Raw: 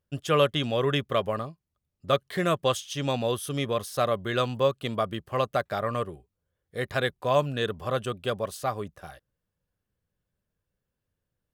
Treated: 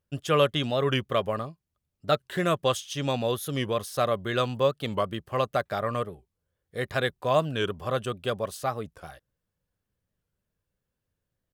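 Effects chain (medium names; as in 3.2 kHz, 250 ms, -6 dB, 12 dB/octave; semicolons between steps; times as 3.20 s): warped record 45 rpm, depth 160 cents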